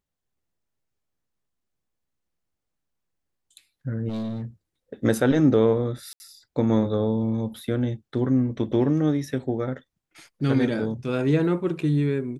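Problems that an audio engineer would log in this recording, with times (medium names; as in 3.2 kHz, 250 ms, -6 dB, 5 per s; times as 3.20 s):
4.08–4.45 s: clipped -27 dBFS
6.13–6.20 s: dropout 70 ms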